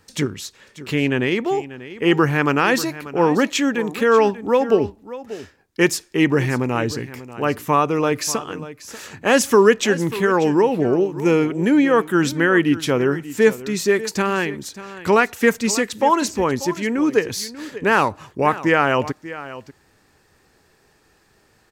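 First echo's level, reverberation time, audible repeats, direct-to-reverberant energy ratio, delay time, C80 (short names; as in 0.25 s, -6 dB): -15.5 dB, none, 1, none, 0.589 s, none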